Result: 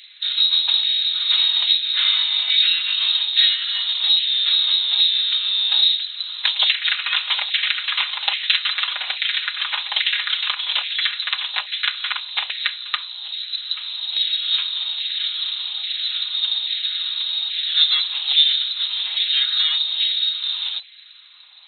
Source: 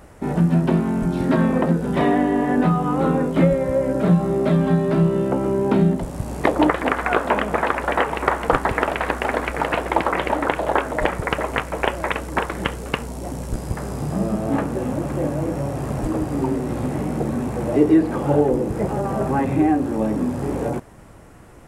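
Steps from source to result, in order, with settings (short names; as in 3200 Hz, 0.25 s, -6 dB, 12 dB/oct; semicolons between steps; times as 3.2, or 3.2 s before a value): minimum comb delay 4.7 ms; bell 300 Hz +9.5 dB 0.41 oct; inverted band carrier 4000 Hz; LFO high-pass saw down 1.2 Hz 730–2100 Hz; gain -2.5 dB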